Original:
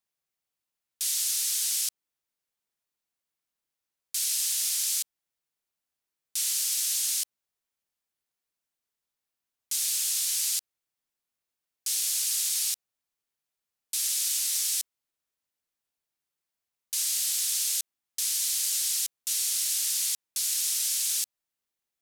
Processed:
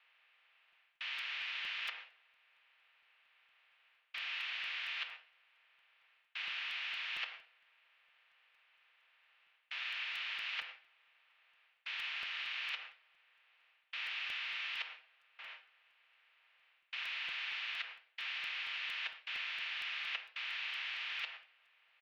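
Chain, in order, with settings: spectral levelling over time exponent 0.4; gate with hold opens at -34 dBFS; comb 7.1 ms, depth 49%; reverse; compression 6:1, threshold -32 dBFS, peak gain reduction 12 dB; reverse; reverberation RT60 0.55 s, pre-delay 5 ms, DRR 7.5 dB; mistuned SSB +82 Hz 440–2600 Hz; crackling interface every 0.23 s, samples 256, repeat, from 0.72 s; trim +14 dB

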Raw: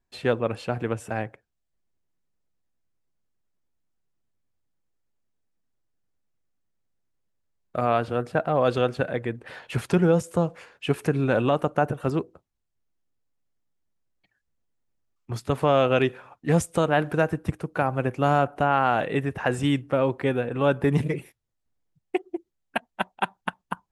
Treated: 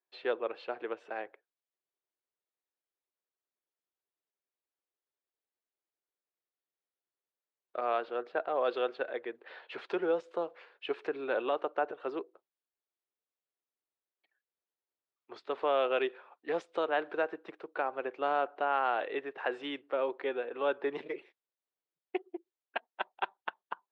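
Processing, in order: Chebyshev band-pass 370–4000 Hz, order 3; trim -7.5 dB

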